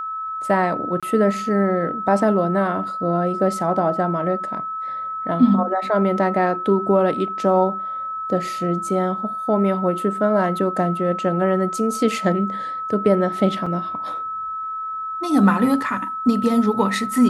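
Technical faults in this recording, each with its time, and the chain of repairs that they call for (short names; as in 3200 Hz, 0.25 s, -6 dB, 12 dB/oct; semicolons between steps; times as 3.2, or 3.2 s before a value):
tone 1300 Hz -25 dBFS
1–1.03 gap 26 ms
13.66 gap 4.6 ms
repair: notch 1300 Hz, Q 30; interpolate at 1, 26 ms; interpolate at 13.66, 4.6 ms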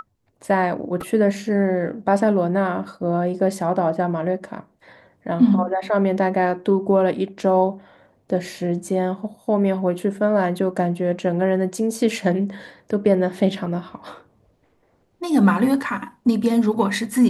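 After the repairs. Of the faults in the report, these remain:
none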